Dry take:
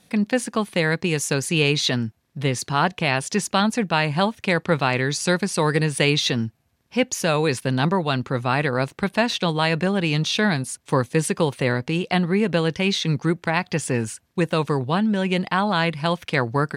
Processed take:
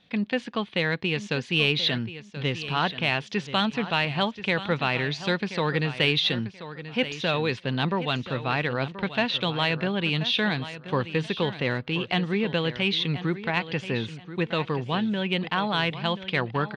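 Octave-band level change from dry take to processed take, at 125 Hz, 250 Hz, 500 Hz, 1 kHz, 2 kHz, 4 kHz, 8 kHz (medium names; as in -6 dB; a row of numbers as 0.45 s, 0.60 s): -5.5 dB, -5.5 dB, -5.5 dB, -5.5 dB, -2.5 dB, -0.5 dB, -20.0 dB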